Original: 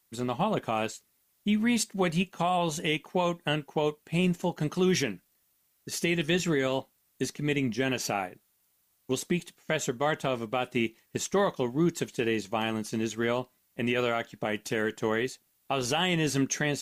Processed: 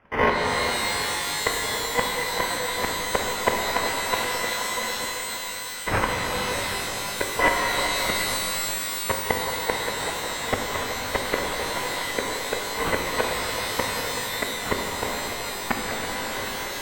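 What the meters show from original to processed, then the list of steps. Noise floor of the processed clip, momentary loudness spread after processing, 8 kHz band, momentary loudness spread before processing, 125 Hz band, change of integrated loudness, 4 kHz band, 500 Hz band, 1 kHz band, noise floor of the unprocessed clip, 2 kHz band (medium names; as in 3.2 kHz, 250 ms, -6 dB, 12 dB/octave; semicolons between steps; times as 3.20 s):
-32 dBFS, 5 LU, +8.0 dB, 8 LU, -4.0 dB, +4.0 dB, +8.0 dB, +1.5 dB, +7.5 dB, -71 dBFS, +8.0 dB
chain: bit-reversed sample order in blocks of 256 samples; treble shelf 12 kHz +8.5 dB; in parallel at +1.5 dB: level held to a coarse grid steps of 22 dB; on the sum: sample-and-hold 11×; inverted gate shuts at -15 dBFS, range -25 dB; distance through air 450 m; on a send: repeats whose band climbs or falls 381 ms, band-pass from 720 Hz, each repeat 1.4 oct, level -8.5 dB; on the sum: pitch-shifted reverb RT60 3.8 s, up +12 st, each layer -2 dB, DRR 0.5 dB; trim +7.5 dB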